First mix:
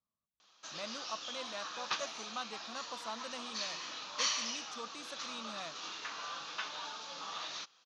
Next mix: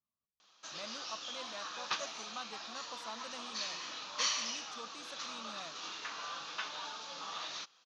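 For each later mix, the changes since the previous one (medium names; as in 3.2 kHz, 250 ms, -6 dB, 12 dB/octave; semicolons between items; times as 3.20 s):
speech -3.5 dB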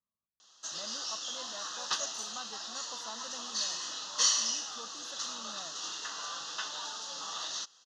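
background: remove distance through air 160 m; master: add Butterworth band-stop 2.3 kHz, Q 3.4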